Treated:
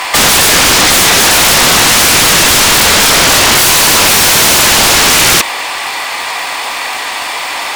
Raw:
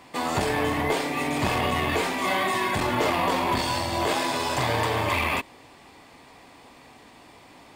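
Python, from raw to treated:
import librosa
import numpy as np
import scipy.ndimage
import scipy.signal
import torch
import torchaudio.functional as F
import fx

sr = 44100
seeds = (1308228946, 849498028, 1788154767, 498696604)

p1 = scipy.signal.sosfilt(scipy.signal.butter(2, 1000.0, 'highpass', fs=sr, output='sos'), x)
p2 = fx.over_compress(p1, sr, threshold_db=-32.0, ratio=-1.0)
p3 = p1 + (p2 * 10.0 ** (-1.0 / 20.0))
p4 = fx.dmg_crackle(p3, sr, seeds[0], per_s=350.0, level_db=-46.0)
p5 = fx.fold_sine(p4, sr, drive_db=18, ceiling_db=-11.5)
y = p5 * 10.0 ** (7.5 / 20.0)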